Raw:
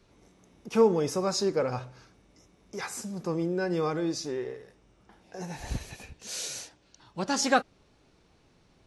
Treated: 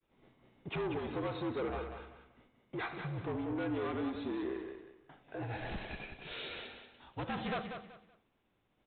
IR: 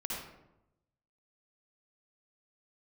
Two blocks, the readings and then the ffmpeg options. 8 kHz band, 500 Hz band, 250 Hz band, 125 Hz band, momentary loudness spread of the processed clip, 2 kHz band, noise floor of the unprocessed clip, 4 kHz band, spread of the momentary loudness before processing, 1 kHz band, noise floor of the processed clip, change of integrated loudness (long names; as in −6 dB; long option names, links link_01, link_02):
below −40 dB, −11.0 dB, −7.0 dB, −5.5 dB, 13 LU, −7.0 dB, −64 dBFS, −10.5 dB, 20 LU, −9.0 dB, −77 dBFS, −10.0 dB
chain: -filter_complex "[0:a]lowshelf=frequency=120:gain=-11.5,afreqshift=-56,agate=range=-33dB:threshold=-55dB:ratio=3:detection=peak,acompressor=threshold=-33dB:ratio=2,aresample=8000,asoftclip=type=tanh:threshold=-35.5dB,aresample=44100,aecho=1:1:189|378|567:0.422|0.114|0.0307,asplit=2[link_01][link_02];[1:a]atrim=start_sample=2205,atrim=end_sample=4410[link_03];[link_02][link_03]afir=irnorm=-1:irlink=0,volume=-13dB[link_04];[link_01][link_04]amix=inputs=2:normalize=0,volume=1dB"